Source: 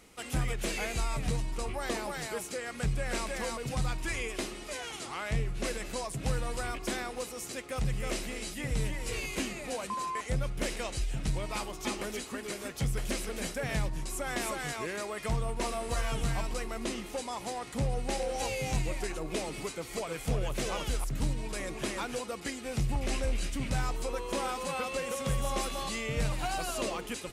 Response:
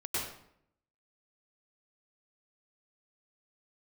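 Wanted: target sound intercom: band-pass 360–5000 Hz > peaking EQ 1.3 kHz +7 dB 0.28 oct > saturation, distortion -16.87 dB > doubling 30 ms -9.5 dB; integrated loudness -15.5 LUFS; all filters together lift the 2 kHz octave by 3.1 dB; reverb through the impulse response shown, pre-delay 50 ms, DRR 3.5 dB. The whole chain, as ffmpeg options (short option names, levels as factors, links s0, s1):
-filter_complex "[0:a]equalizer=f=2000:t=o:g=3,asplit=2[s0][s1];[1:a]atrim=start_sample=2205,adelay=50[s2];[s1][s2]afir=irnorm=-1:irlink=0,volume=0.376[s3];[s0][s3]amix=inputs=2:normalize=0,highpass=360,lowpass=5000,equalizer=f=1300:t=o:w=0.28:g=7,asoftclip=threshold=0.0422,asplit=2[s4][s5];[s5]adelay=30,volume=0.335[s6];[s4][s6]amix=inputs=2:normalize=0,volume=10"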